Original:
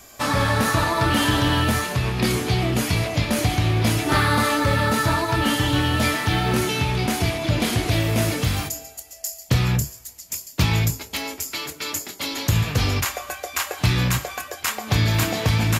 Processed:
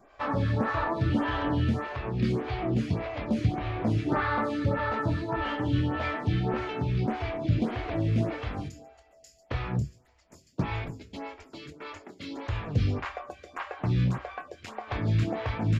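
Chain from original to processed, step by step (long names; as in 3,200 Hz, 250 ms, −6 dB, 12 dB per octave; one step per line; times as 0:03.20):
head-to-tape spacing loss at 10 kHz 33 dB
phaser with staggered stages 1.7 Hz
level −2 dB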